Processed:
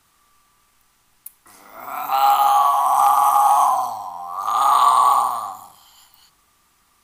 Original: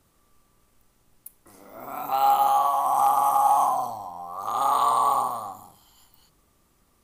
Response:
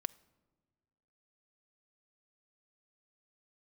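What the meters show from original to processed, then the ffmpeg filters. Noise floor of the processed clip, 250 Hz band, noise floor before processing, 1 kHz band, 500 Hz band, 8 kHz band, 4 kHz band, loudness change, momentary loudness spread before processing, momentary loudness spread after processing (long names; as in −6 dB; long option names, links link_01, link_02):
−61 dBFS, can't be measured, −65 dBFS, +6.0 dB, +2.0 dB, +7.0 dB, +9.0 dB, +6.0 dB, 15 LU, 15 LU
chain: -filter_complex "[0:a]asplit=2[link_01][link_02];[link_02]highpass=frequency=650:width=0.5412,highpass=frequency=650:width=1.3066[link_03];[1:a]atrim=start_sample=2205,highshelf=frequency=8000:gain=-7[link_04];[link_03][link_04]afir=irnorm=-1:irlink=0,volume=12.5dB[link_05];[link_01][link_05]amix=inputs=2:normalize=0,volume=-3.5dB"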